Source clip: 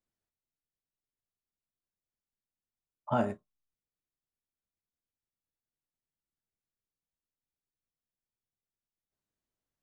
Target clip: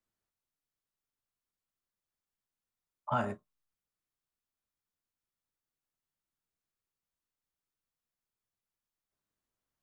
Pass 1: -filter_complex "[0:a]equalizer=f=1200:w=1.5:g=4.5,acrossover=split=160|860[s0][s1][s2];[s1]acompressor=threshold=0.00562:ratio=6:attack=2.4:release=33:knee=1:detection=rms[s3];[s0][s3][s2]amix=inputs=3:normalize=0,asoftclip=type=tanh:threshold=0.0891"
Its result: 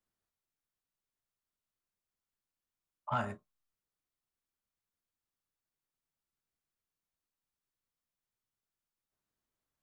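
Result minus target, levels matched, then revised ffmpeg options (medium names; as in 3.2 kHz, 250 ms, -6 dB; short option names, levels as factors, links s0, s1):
saturation: distortion +15 dB; compression: peak gain reduction +8 dB
-filter_complex "[0:a]equalizer=f=1200:w=1.5:g=4.5,acrossover=split=160|860[s0][s1][s2];[s1]acompressor=threshold=0.0168:ratio=6:attack=2.4:release=33:knee=1:detection=rms[s3];[s0][s3][s2]amix=inputs=3:normalize=0,asoftclip=type=tanh:threshold=0.266"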